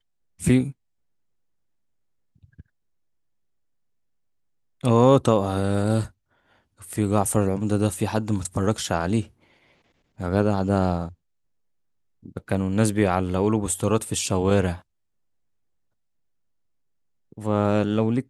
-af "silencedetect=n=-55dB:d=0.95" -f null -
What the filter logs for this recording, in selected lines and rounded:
silence_start: 0.72
silence_end: 2.36 | silence_duration: 1.63
silence_start: 2.66
silence_end: 4.81 | silence_duration: 2.15
silence_start: 11.14
silence_end: 12.23 | silence_duration: 1.08
silence_start: 14.82
silence_end: 17.32 | silence_duration: 2.50